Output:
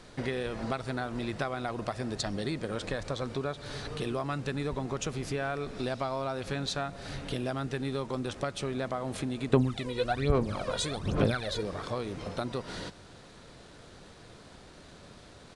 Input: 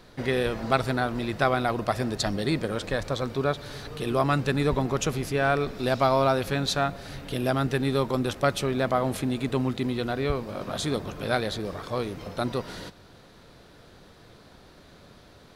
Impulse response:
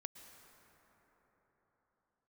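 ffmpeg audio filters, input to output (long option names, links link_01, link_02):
-filter_complex "[0:a]acompressor=threshold=-30dB:ratio=6,acrusher=bits=8:mix=0:aa=0.5,asettb=1/sr,asplit=3[link_01][link_02][link_03];[link_01]atrim=end=9.534[link_04];[link_02]atrim=start=9.53:end=11.63,asetpts=PTS-STARTPTS,afade=type=in:duration=0.004:curve=qsin,afade=type=out:start_time=2.096:duration=0.004:curve=qsin,aphaser=in_gain=1:out_gain=1:delay=2.1:decay=0.74:speed=1.2:type=sinusoidal[link_05];[link_03]atrim=start=11.626[link_06];[link_04][link_05]acrossfade=duration=0.004:curve1=hsin:curve2=qsin[link_07];[link_07][link_06]acrossfade=duration=0.004:curve1=qsin:curve2=hsin,aresample=22050,aresample=44100"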